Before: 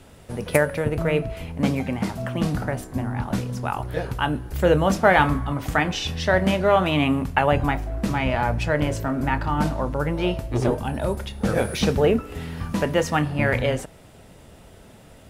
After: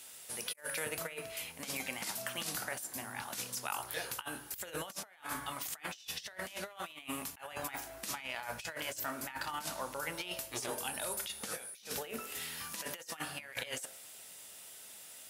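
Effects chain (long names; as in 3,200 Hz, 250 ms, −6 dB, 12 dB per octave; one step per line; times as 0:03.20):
first difference
hum removal 48.49 Hz, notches 36
compressor whose output falls as the input rises −44 dBFS, ratio −0.5
level +3.5 dB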